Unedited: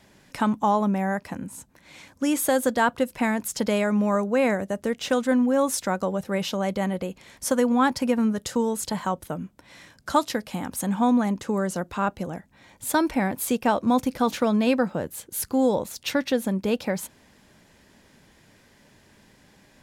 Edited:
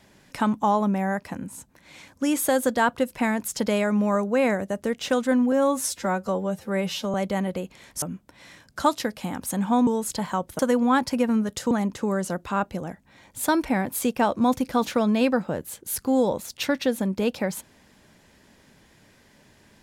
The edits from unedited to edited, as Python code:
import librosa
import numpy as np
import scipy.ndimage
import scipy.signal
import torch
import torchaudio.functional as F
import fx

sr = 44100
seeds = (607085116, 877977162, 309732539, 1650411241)

y = fx.edit(x, sr, fx.stretch_span(start_s=5.52, length_s=1.08, factor=1.5),
    fx.swap(start_s=7.48, length_s=1.12, other_s=9.32, other_length_s=1.85), tone=tone)